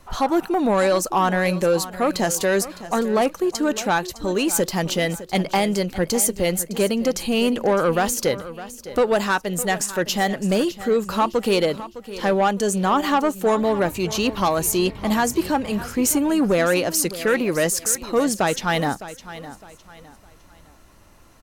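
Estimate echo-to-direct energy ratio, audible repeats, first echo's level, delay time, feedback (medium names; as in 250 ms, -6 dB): -14.5 dB, 3, -15.0 dB, 609 ms, 33%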